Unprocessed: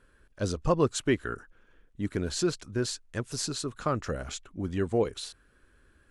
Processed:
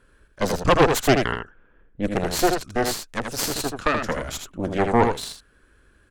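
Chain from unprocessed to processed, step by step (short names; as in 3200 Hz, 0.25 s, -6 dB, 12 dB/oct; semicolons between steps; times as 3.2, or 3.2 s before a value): added harmonics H 6 -7 dB, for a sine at -11 dBFS; 1.31–2.17 low-pass opened by the level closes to 1600 Hz, open at -24.5 dBFS; echo 80 ms -5.5 dB; gain +4 dB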